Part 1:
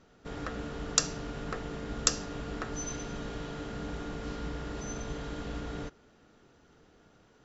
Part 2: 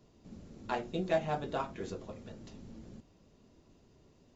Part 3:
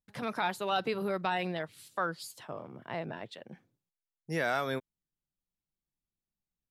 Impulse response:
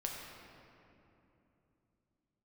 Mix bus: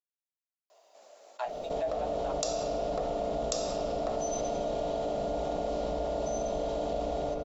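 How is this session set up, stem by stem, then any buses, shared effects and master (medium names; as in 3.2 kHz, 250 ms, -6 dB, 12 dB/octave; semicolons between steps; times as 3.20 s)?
-11.0 dB, 1.45 s, bus A, send -3.5 dB, fifteen-band graphic EQ 100 Hz -8 dB, 630 Hz +8 dB, 1.6 kHz -12 dB, 4 kHz +3 dB
-1.0 dB, 0.70 s, bus A, no send, high-pass 610 Hz 24 dB/octave; upward expansion 2.5:1, over -52 dBFS
mute
bus A: 0.0 dB, treble shelf 5.2 kHz +8.5 dB; compression 3:1, threshold -50 dBFS, peak gain reduction 18.5 dB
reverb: on, RT60 3.0 s, pre-delay 7 ms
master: peaking EQ 640 Hz +15 dB 0.74 oct; level flattener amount 70%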